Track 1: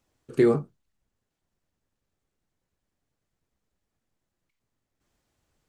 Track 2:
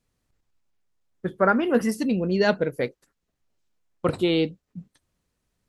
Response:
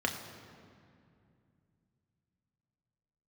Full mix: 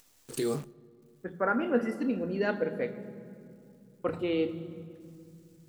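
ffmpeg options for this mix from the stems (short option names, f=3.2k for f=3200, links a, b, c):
-filter_complex "[0:a]alimiter=limit=-20dB:level=0:latency=1,aexciter=amount=7:drive=4:freq=2.9k,acrusher=bits=8:dc=4:mix=0:aa=0.000001,volume=-4dB,asplit=2[a][b];[b]volume=-23dB[c];[1:a]bass=f=250:g=-1,treble=f=4k:g=-10,volume=-13dB,asplit=2[d][e];[e]volume=-6dB[f];[2:a]atrim=start_sample=2205[g];[c][f]amix=inputs=2:normalize=0[h];[h][g]afir=irnorm=-1:irlink=0[i];[a][d][i]amix=inputs=3:normalize=0,acompressor=mode=upward:threshold=-54dB:ratio=2.5"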